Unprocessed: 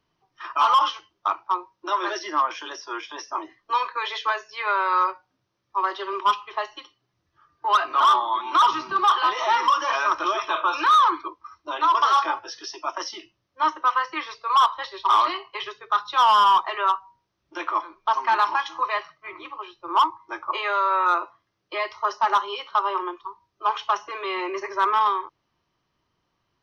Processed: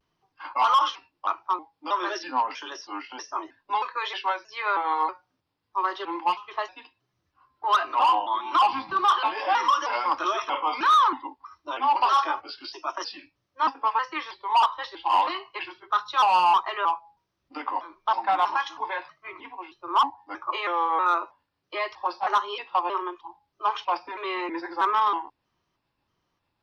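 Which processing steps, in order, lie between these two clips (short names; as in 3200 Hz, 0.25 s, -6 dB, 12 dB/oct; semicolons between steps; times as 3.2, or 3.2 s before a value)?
trilling pitch shifter -2.5 st, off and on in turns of 0.318 s; vibrato 0.32 Hz 22 cents; gain -2 dB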